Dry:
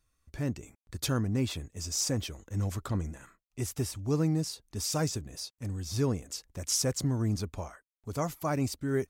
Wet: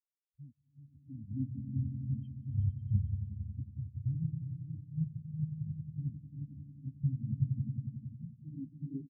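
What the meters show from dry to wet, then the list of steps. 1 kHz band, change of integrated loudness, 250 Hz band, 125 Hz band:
below −40 dB, −6.0 dB, −8.0 dB, −2.0 dB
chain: in parallel at −3 dB: output level in coarse steps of 24 dB
on the sum: low-shelf EQ 200 Hz −3.5 dB
single-tap delay 378 ms −10.5 dB
auto-filter low-pass square 0.54 Hz 410–2,700 Hz
flat-topped bell 810 Hz −12.5 dB 2.7 octaves
downward compressor, threshold −31 dBFS, peak gain reduction 7 dB
on a send: echo that builds up and dies away 91 ms, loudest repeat 5, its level −5 dB
on the sum: every bin expanded away from the loudest bin 4 to 1

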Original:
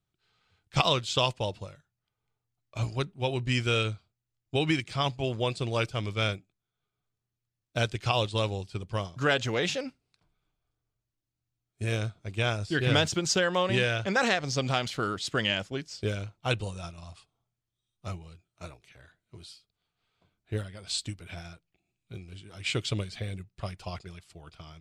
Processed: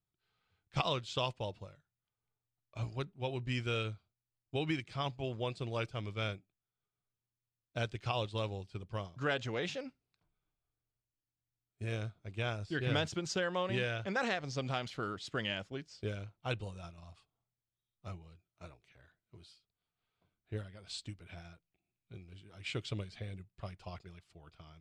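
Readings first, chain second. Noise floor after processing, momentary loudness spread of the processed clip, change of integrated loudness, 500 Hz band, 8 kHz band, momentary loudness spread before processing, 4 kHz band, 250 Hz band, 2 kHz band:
below −85 dBFS, 18 LU, −9.0 dB, −8.0 dB, −14.0 dB, 19 LU, −10.5 dB, −8.0 dB, −9.0 dB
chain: low-pass filter 3,700 Hz 6 dB per octave
level −8 dB

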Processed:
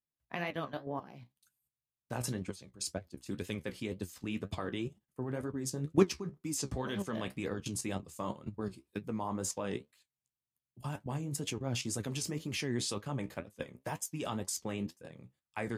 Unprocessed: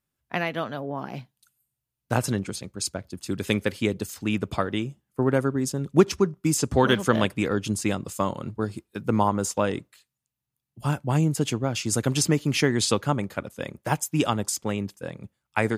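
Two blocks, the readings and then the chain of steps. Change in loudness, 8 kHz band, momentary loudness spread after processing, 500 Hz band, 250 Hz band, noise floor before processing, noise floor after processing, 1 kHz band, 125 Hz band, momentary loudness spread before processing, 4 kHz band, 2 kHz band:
−12.0 dB, −9.5 dB, 8 LU, −12.0 dB, −11.5 dB, −85 dBFS, below −85 dBFS, −14.0 dB, −12.5 dB, 12 LU, −11.0 dB, −13.0 dB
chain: output level in coarse steps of 16 dB
flanger 2 Hz, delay 9.3 ms, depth 7.9 ms, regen +48%
notch filter 1,400 Hz, Q 11

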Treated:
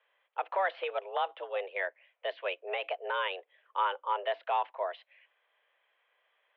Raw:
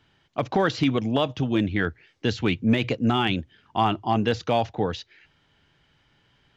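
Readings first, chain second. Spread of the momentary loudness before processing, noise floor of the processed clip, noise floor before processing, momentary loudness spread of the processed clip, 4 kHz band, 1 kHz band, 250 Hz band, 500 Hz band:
8 LU, −78 dBFS, −65 dBFS, 8 LU, −11.0 dB, −5.0 dB, below −35 dB, −8.0 dB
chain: single-sideband voice off tune +190 Hz 340–2,800 Hz
level −6.5 dB

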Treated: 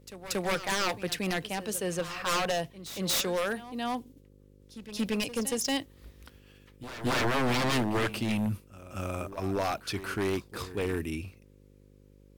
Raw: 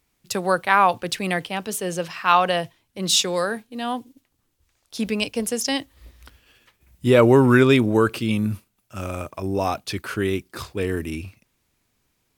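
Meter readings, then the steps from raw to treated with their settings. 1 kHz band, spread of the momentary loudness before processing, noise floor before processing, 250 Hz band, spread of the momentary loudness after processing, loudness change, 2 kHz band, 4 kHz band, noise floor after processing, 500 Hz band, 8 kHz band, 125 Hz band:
−11.0 dB, 16 LU, −71 dBFS, −9.5 dB, 12 LU, −9.5 dB, −7.5 dB, −7.0 dB, −57 dBFS, −10.5 dB, −6.0 dB, −10.0 dB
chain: wave folding −17.5 dBFS
hum with harmonics 50 Hz, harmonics 11, −52 dBFS −4 dB per octave
echo ahead of the sound 232 ms −14 dB
level −5 dB

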